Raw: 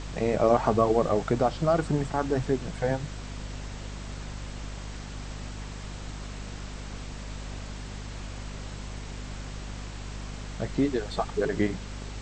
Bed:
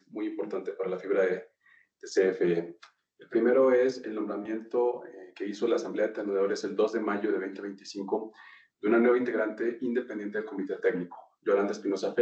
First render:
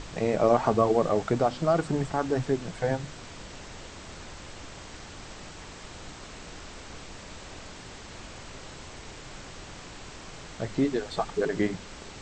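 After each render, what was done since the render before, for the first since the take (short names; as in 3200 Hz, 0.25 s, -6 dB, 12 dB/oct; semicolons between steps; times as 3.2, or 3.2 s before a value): notches 50/100/150/200/250 Hz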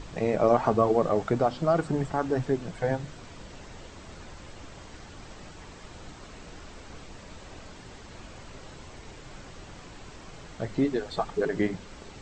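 denoiser 6 dB, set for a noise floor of -45 dBFS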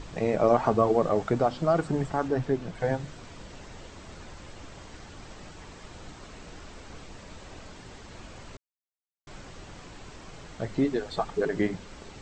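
2.28–2.8 air absorption 55 m; 8.57–9.27 mute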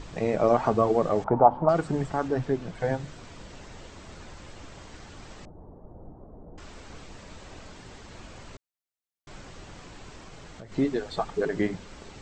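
1.24–1.69 synth low-pass 900 Hz, resonance Q 8.3; 5.45–6.58 inverse Chebyshev low-pass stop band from 2700 Hz, stop band 60 dB; 10.22–10.72 compressor, threshold -40 dBFS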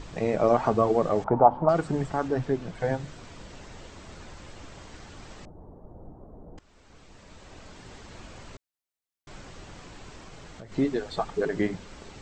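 6.59–7.94 fade in linear, from -19 dB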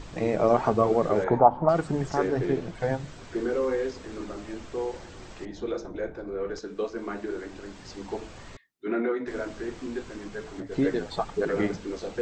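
add bed -4.5 dB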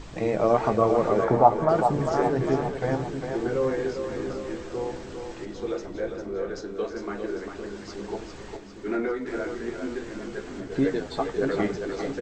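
doubler 15 ms -11.5 dB; split-band echo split 320 Hz, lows 0.637 s, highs 0.401 s, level -6.5 dB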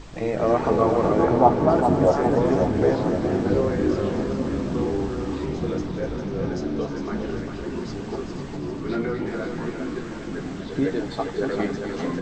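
echoes that change speed 0.136 s, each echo -5 st, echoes 3; thinning echo 0.246 s, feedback 73%, high-pass 880 Hz, level -9 dB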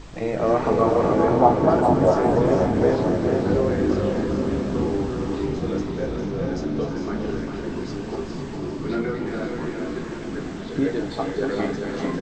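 doubler 40 ms -11.5 dB; echo 0.444 s -7.5 dB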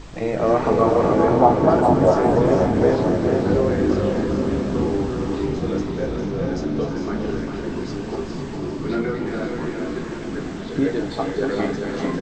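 gain +2 dB; limiter -1 dBFS, peak gain reduction 1.5 dB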